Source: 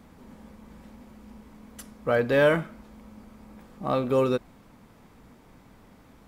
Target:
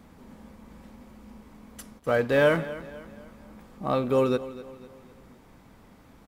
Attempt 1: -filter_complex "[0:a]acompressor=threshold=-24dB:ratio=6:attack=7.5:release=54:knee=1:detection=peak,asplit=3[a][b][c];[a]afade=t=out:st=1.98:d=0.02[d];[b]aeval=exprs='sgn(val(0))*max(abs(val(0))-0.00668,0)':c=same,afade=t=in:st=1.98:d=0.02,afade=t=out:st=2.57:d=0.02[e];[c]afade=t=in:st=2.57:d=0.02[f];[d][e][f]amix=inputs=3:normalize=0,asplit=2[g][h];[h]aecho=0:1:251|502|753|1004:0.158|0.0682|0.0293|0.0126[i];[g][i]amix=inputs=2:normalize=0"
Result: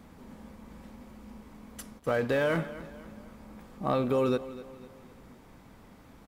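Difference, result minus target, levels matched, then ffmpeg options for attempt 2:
compressor: peak gain reduction +8 dB
-filter_complex "[0:a]asplit=3[a][b][c];[a]afade=t=out:st=1.98:d=0.02[d];[b]aeval=exprs='sgn(val(0))*max(abs(val(0))-0.00668,0)':c=same,afade=t=in:st=1.98:d=0.02,afade=t=out:st=2.57:d=0.02[e];[c]afade=t=in:st=2.57:d=0.02[f];[d][e][f]amix=inputs=3:normalize=0,asplit=2[g][h];[h]aecho=0:1:251|502|753|1004:0.158|0.0682|0.0293|0.0126[i];[g][i]amix=inputs=2:normalize=0"

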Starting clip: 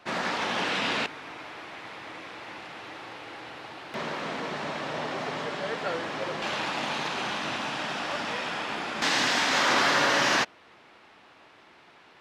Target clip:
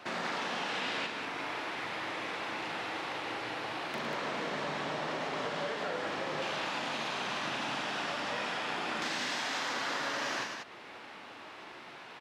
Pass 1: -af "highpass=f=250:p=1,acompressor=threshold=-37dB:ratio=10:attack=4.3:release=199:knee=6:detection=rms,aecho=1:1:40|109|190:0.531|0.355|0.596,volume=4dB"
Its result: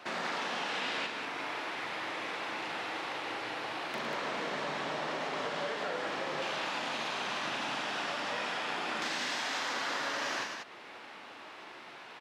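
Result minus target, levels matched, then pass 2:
125 Hz band -3.5 dB
-af "highpass=f=100:p=1,acompressor=threshold=-37dB:ratio=10:attack=4.3:release=199:knee=6:detection=rms,aecho=1:1:40|109|190:0.531|0.355|0.596,volume=4dB"

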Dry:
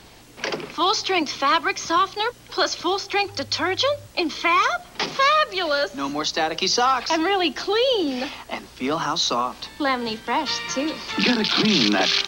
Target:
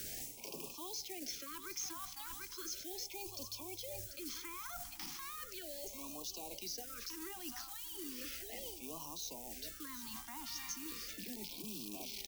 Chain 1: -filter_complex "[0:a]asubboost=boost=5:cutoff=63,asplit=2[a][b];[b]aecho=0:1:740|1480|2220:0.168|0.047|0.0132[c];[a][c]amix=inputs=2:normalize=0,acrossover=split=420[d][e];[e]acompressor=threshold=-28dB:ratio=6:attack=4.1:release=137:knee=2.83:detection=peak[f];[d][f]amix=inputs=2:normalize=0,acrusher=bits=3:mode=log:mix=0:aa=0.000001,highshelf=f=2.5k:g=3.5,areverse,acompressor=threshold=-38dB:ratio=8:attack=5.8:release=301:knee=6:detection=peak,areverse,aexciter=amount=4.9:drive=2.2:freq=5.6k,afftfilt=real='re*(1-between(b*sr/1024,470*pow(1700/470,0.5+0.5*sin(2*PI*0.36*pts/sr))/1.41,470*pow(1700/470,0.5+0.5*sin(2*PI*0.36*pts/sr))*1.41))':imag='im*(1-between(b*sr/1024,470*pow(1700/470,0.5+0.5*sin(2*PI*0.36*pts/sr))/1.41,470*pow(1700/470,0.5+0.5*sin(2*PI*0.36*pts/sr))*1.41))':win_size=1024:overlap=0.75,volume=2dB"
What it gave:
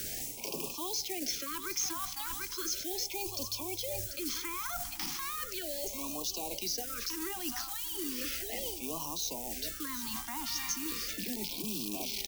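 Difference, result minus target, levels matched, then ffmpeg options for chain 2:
compressor: peak gain reduction -9 dB
-filter_complex "[0:a]asubboost=boost=5:cutoff=63,asplit=2[a][b];[b]aecho=0:1:740|1480|2220:0.168|0.047|0.0132[c];[a][c]amix=inputs=2:normalize=0,acrossover=split=420[d][e];[e]acompressor=threshold=-28dB:ratio=6:attack=4.1:release=137:knee=2.83:detection=peak[f];[d][f]amix=inputs=2:normalize=0,acrusher=bits=3:mode=log:mix=0:aa=0.000001,highshelf=f=2.5k:g=3.5,areverse,acompressor=threshold=-48dB:ratio=8:attack=5.8:release=301:knee=6:detection=peak,areverse,aexciter=amount=4.9:drive=2.2:freq=5.6k,afftfilt=real='re*(1-between(b*sr/1024,470*pow(1700/470,0.5+0.5*sin(2*PI*0.36*pts/sr))/1.41,470*pow(1700/470,0.5+0.5*sin(2*PI*0.36*pts/sr))*1.41))':imag='im*(1-between(b*sr/1024,470*pow(1700/470,0.5+0.5*sin(2*PI*0.36*pts/sr))/1.41,470*pow(1700/470,0.5+0.5*sin(2*PI*0.36*pts/sr))*1.41))':win_size=1024:overlap=0.75,volume=2dB"

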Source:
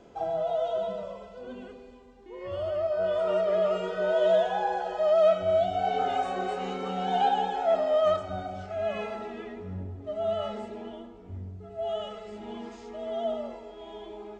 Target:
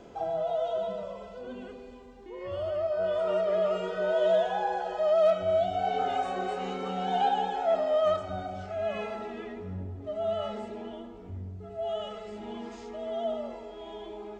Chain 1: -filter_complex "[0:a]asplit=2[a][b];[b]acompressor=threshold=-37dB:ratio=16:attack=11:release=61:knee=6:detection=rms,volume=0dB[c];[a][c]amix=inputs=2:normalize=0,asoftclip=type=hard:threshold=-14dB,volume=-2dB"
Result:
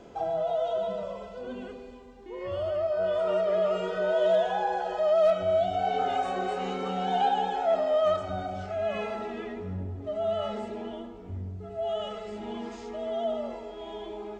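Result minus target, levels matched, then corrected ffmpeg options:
compressor: peak gain reduction -10.5 dB
-filter_complex "[0:a]asplit=2[a][b];[b]acompressor=threshold=-48dB:ratio=16:attack=11:release=61:knee=6:detection=rms,volume=0dB[c];[a][c]amix=inputs=2:normalize=0,asoftclip=type=hard:threshold=-14dB,volume=-2dB"

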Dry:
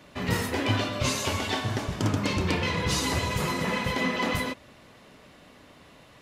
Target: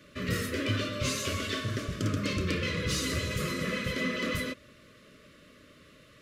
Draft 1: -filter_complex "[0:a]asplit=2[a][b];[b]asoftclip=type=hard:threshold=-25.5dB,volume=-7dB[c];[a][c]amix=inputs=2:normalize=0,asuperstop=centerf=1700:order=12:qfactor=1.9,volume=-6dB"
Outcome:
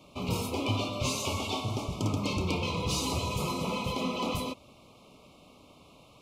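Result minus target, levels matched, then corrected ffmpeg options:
1000 Hz band +6.5 dB
-filter_complex "[0:a]asplit=2[a][b];[b]asoftclip=type=hard:threshold=-25.5dB,volume=-7dB[c];[a][c]amix=inputs=2:normalize=0,asuperstop=centerf=830:order=12:qfactor=1.9,volume=-6dB"

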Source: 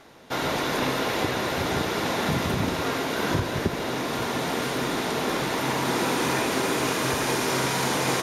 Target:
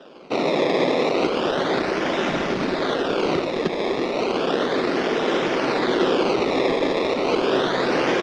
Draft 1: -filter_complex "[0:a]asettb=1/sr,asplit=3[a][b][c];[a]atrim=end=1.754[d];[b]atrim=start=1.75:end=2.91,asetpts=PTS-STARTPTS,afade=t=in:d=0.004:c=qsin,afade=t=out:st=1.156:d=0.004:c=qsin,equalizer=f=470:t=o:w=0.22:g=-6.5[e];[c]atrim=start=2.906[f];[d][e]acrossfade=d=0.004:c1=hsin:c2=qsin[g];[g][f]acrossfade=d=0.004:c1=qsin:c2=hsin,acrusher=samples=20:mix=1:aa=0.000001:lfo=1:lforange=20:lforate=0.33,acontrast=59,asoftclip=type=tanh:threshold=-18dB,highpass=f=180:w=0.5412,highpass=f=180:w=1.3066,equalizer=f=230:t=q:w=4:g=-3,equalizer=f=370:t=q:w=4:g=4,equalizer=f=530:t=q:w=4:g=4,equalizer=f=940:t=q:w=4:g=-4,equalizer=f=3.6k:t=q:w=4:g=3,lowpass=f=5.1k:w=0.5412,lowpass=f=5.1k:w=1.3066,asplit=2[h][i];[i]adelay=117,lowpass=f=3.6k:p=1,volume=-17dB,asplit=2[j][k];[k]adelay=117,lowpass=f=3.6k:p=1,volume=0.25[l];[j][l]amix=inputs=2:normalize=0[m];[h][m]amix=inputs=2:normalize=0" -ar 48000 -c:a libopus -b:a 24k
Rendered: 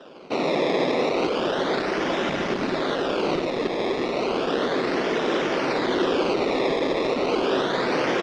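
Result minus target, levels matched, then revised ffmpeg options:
soft clip: distortion +8 dB
-filter_complex "[0:a]asettb=1/sr,asplit=3[a][b][c];[a]atrim=end=1.754[d];[b]atrim=start=1.75:end=2.91,asetpts=PTS-STARTPTS,afade=t=in:d=0.004:c=qsin,afade=t=out:st=1.156:d=0.004:c=qsin,equalizer=f=470:t=o:w=0.22:g=-6.5[e];[c]atrim=start=2.906[f];[d][e]acrossfade=d=0.004:c1=hsin:c2=qsin[g];[g][f]acrossfade=d=0.004:c1=qsin:c2=hsin,acrusher=samples=20:mix=1:aa=0.000001:lfo=1:lforange=20:lforate=0.33,acontrast=59,asoftclip=type=tanh:threshold=-11.5dB,highpass=f=180:w=0.5412,highpass=f=180:w=1.3066,equalizer=f=230:t=q:w=4:g=-3,equalizer=f=370:t=q:w=4:g=4,equalizer=f=530:t=q:w=4:g=4,equalizer=f=940:t=q:w=4:g=-4,equalizer=f=3.6k:t=q:w=4:g=3,lowpass=f=5.1k:w=0.5412,lowpass=f=5.1k:w=1.3066,asplit=2[h][i];[i]adelay=117,lowpass=f=3.6k:p=1,volume=-17dB,asplit=2[j][k];[k]adelay=117,lowpass=f=3.6k:p=1,volume=0.25[l];[j][l]amix=inputs=2:normalize=0[m];[h][m]amix=inputs=2:normalize=0" -ar 48000 -c:a libopus -b:a 24k

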